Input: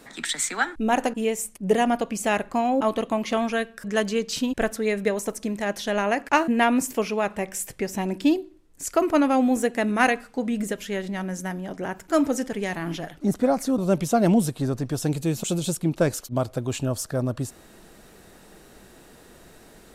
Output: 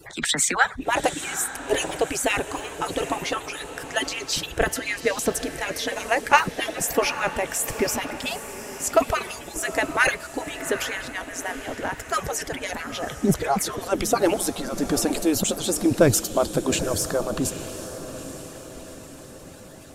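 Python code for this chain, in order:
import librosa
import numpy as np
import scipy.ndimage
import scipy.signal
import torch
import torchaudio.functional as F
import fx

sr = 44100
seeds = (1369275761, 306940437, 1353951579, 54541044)

y = fx.hpss_only(x, sr, part='percussive')
y = fx.low_shelf(y, sr, hz=160.0, db=7.0)
y = fx.transient(y, sr, attack_db=0, sustain_db=7)
y = fx.echo_diffused(y, sr, ms=833, feedback_pct=50, wet_db=-11.5)
y = y * 10.0 ** (4.5 / 20.0)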